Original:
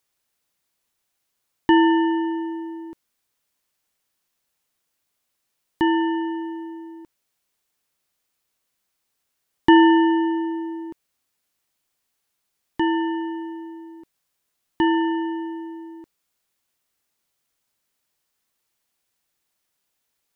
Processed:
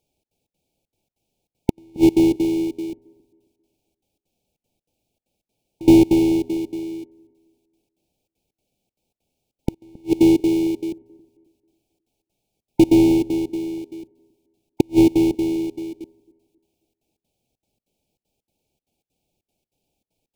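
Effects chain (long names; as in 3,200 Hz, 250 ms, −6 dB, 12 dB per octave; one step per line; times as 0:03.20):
each half-wave held at its own peak
gate pattern "xxx.xx.x" 194 BPM −24 dB
gate with flip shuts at −10 dBFS, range −42 dB
linear-phase brick-wall band-stop 900–2,200 Hz
tilt shelving filter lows +7.5 dB, about 850 Hz
delay with a low-pass on its return 269 ms, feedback 34%, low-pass 700 Hz, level −21 dB
level +1 dB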